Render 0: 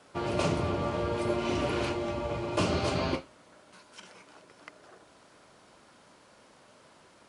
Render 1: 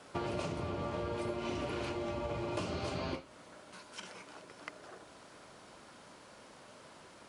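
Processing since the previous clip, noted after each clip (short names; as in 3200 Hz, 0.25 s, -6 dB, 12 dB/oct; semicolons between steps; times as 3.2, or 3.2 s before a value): compressor 16:1, threshold -36 dBFS, peak gain reduction 14 dB; gain +2.5 dB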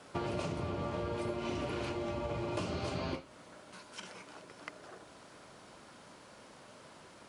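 bell 140 Hz +2 dB 1.7 oct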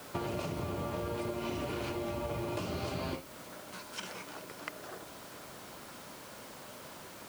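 compressor 3:1, threshold -40 dBFS, peak gain reduction 7 dB; added noise white -61 dBFS; gain +5.5 dB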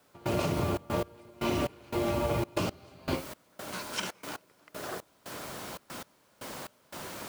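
step gate "..xxxx.x...xx" 117 bpm -24 dB; gain +7.5 dB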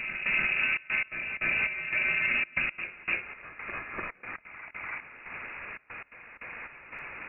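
inverted band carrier 2700 Hz; reverse echo 0.295 s -7.5 dB; gain +1 dB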